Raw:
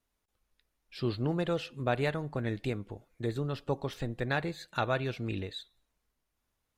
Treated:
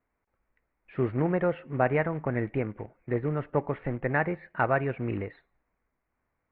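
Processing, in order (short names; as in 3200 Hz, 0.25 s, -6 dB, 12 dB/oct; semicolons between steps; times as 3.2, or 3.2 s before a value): wide varispeed 1.04×; short-mantissa float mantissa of 2-bit; elliptic low-pass 2200 Hz, stop band 70 dB; low shelf 83 Hz -6 dB; gain +6 dB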